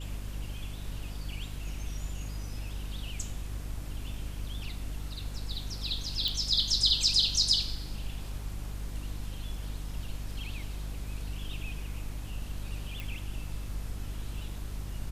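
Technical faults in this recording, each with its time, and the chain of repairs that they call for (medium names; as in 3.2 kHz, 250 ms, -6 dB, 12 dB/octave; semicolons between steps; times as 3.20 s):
hum 50 Hz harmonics 6 -38 dBFS
6.28 s: pop
13.00 s: pop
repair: de-click; de-hum 50 Hz, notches 6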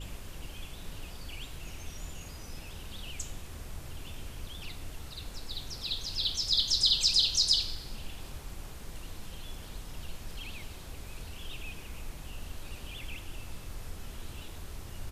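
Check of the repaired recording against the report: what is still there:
nothing left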